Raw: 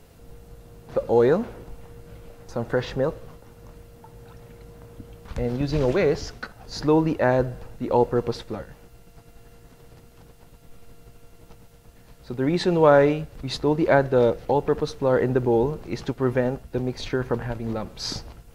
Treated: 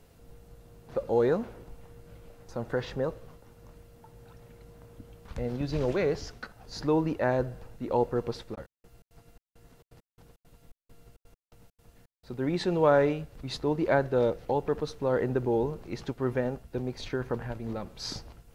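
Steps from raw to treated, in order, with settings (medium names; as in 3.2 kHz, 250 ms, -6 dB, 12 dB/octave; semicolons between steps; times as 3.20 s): 8.54–12.36 s: trance gate "..xxx.x..xx.xxx" 168 bpm -60 dB; trim -6.5 dB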